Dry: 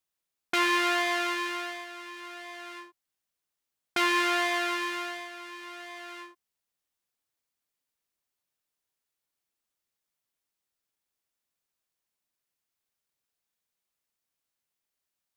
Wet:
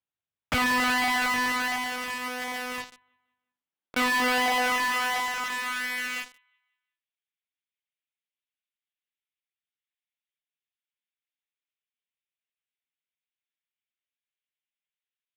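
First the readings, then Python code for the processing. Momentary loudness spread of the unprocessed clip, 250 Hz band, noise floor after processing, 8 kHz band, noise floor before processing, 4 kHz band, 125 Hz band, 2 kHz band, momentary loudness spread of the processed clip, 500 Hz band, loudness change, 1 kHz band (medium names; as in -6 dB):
18 LU, +2.5 dB, under -85 dBFS, +5.5 dB, under -85 dBFS, +2.5 dB, no reading, +4.5 dB, 10 LU, -0.5 dB, +1.5 dB, +4.0 dB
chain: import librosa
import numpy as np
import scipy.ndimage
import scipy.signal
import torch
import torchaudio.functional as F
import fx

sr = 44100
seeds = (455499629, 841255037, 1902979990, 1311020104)

p1 = fx.lpc_monotone(x, sr, seeds[0], pitch_hz=250.0, order=10)
p2 = fx.filter_sweep_highpass(p1, sr, from_hz=89.0, to_hz=2200.0, start_s=2.72, end_s=6.31, q=1.4)
p3 = fx.echo_feedback(p2, sr, ms=179, feedback_pct=40, wet_db=-13)
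p4 = fx.fuzz(p3, sr, gain_db=48.0, gate_db=-46.0)
p5 = p3 + (p4 * librosa.db_to_amplitude(-7.0))
y = p5 * librosa.db_to_amplitude(-5.5)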